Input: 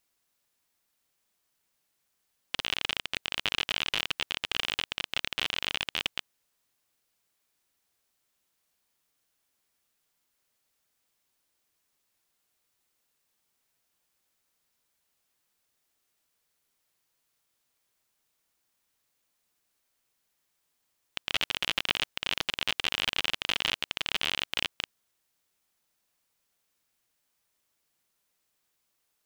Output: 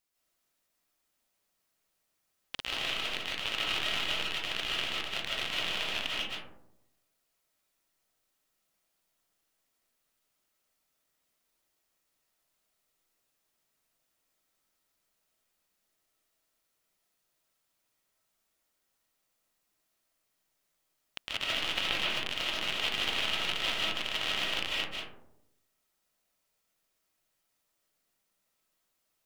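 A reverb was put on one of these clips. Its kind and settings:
comb and all-pass reverb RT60 0.83 s, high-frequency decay 0.3×, pre-delay 110 ms, DRR −6 dB
level −7 dB

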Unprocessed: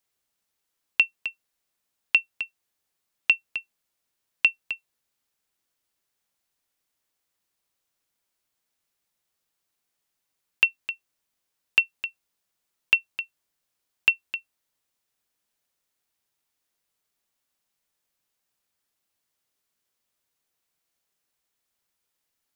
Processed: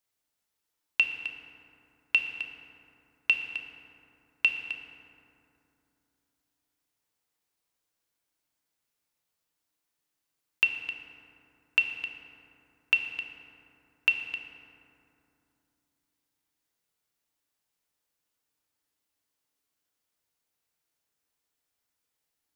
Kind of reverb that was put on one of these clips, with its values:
feedback delay network reverb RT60 2.8 s, low-frequency decay 1.3×, high-frequency decay 0.45×, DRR 3.5 dB
level −4 dB

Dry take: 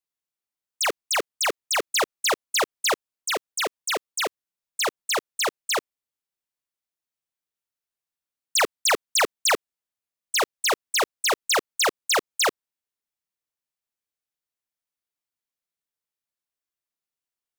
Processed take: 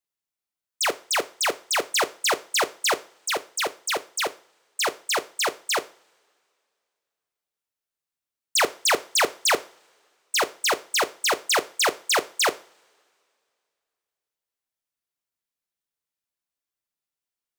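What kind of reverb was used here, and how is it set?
coupled-rooms reverb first 0.38 s, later 2.5 s, from −27 dB, DRR 11.5 dB

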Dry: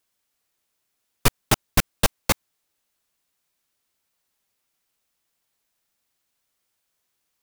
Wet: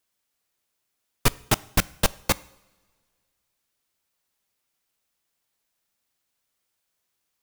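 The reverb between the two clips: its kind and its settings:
coupled-rooms reverb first 0.67 s, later 2.1 s, from −17 dB, DRR 19.5 dB
level −2 dB

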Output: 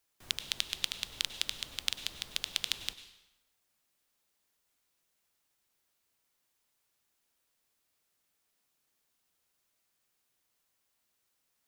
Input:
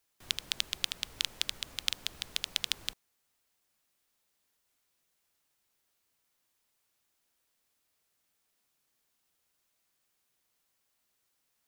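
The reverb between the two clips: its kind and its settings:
dense smooth reverb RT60 0.94 s, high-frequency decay 0.85×, pre-delay 85 ms, DRR 12 dB
level −1 dB

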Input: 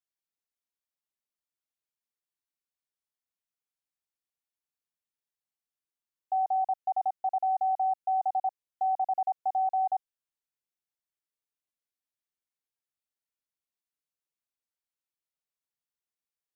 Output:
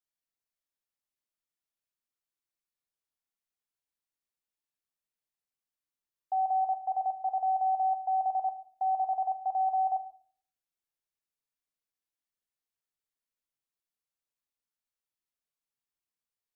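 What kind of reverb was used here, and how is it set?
rectangular room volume 59 cubic metres, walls mixed, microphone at 0.33 metres
level −2.5 dB

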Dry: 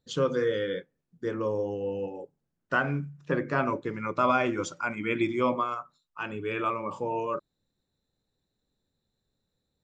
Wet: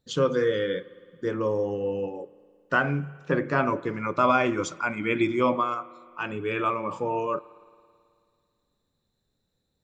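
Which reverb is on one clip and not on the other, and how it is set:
spring reverb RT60 2.2 s, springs 54 ms, chirp 20 ms, DRR 19 dB
level +3 dB

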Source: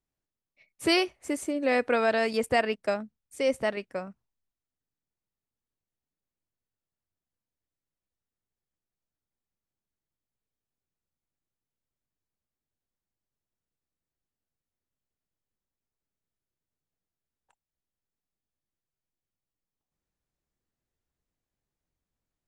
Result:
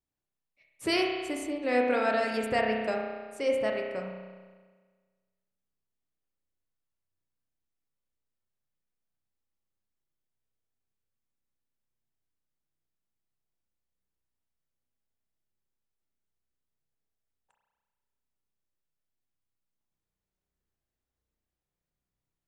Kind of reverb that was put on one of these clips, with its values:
spring reverb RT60 1.5 s, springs 32 ms, chirp 35 ms, DRR 0.5 dB
level −4.5 dB

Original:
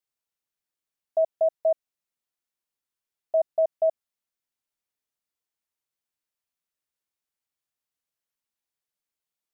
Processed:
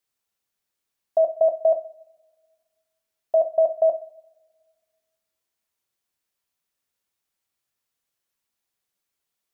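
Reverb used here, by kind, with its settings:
coupled-rooms reverb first 0.42 s, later 1.6 s, from −22 dB, DRR 7 dB
level +6 dB

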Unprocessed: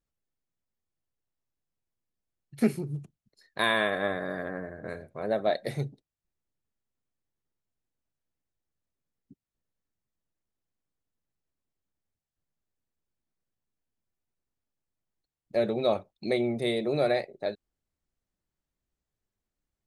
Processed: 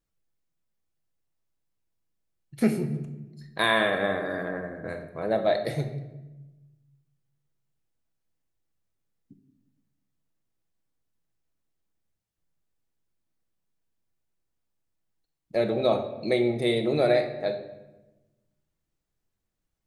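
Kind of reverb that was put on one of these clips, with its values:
rectangular room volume 500 cubic metres, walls mixed, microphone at 0.65 metres
level +2 dB

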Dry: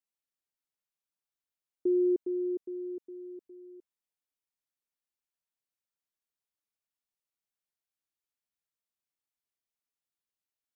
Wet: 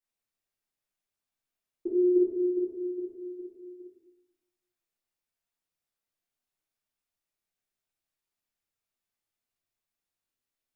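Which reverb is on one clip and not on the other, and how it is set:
rectangular room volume 210 cubic metres, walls mixed, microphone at 3.6 metres
level −7 dB

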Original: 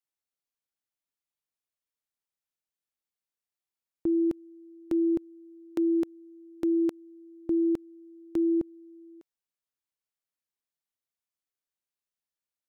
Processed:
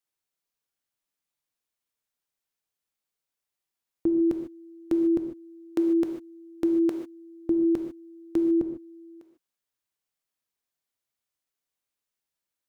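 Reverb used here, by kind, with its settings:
reverb whose tail is shaped and stops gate 170 ms flat, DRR 5 dB
level +3.5 dB

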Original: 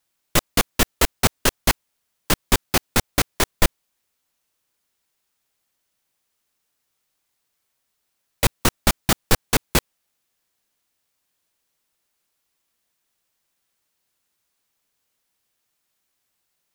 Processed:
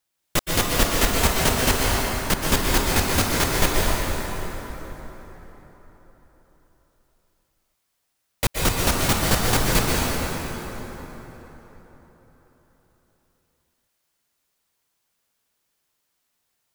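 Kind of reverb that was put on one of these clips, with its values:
dense smooth reverb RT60 4.3 s, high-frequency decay 0.6×, pre-delay 110 ms, DRR −4 dB
level −4 dB

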